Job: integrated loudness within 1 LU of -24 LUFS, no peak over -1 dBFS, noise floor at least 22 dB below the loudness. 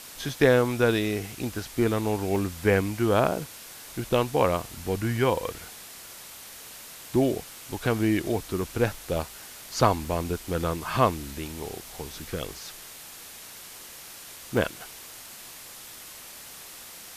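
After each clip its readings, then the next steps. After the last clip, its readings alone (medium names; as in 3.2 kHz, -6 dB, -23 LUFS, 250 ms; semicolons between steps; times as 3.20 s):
dropouts 4; longest dropout 1.5 ms; noise floor -44 dBFS; noise floor target -49 dBFS; loudness -27.0 LUFS; peak level -6.5 dBFS; loudness target -24.0 LUFS
-> interpolate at 0.29/2.36/10.05/14.57 s, 1.5 ms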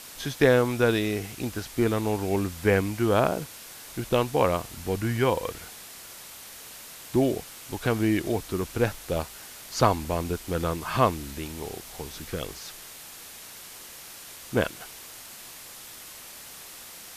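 dropouts 0; noise floor -44 dBFS; noise floor target -49 dBFS
-> noise reduction 6 dB, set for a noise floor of -44 dBFS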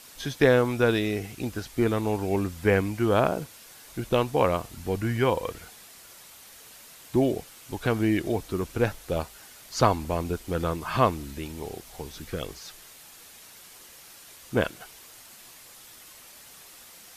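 noise floor -49 dBFS; loudness -27.0 LUFS; peak level -6.5 dBFS; loudness target -24.0 LUFS
-> trim +3 dB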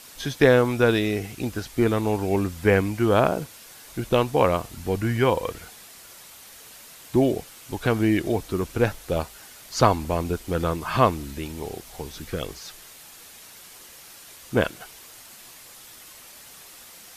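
loudness -24.0 LUFS; peak level -3.5 dBFS; noise floor -46 dBFS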